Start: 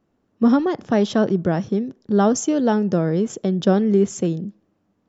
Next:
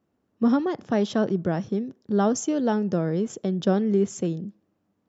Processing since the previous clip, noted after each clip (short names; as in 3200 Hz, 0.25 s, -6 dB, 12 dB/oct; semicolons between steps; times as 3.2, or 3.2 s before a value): HPF 43 Hz; gain -5 dB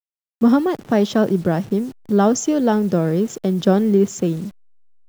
level-crossing sampler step -45.5 dBFS; gain +6.5 dB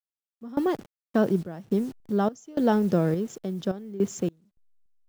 random-step tremolo 3.5 Hz, depth 100%; gain -4.5 dB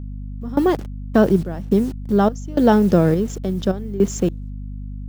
hum 50 Hz, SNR 11 dB; gain +8 dB